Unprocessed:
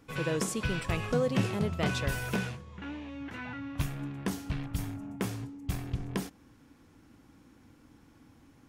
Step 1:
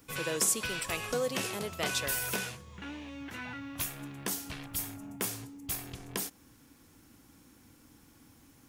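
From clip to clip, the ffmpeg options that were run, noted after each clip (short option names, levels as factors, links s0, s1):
-filter_complex "[0:a]acrossover=split=310[s0][s1];[s0]acompressor=threshold=0.00794:ratio=6[s2];[s1]aemphasis=mode=production:type=75kf[s3];[s2][s3]amix=inputs=2:normalize=0,volume=0.794"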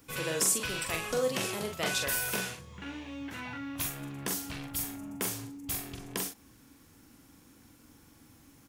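-filter_complex "[0:a]asplit=2[s0][s1];[s1]adelay=43,volume=0.562[s2];[s0][s2]amix=inputs=2:normalize=0"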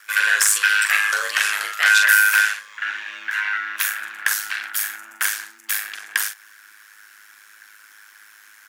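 -af "aeval=exprs='val(0)*sin(2*PI*52*n/s)':c=same,aeval=exprs='0.211*sin(PI/2*1.78*val(0)/0.211)':c=same,highpass=f=1600:t=q:w=6.6,volume=1.68"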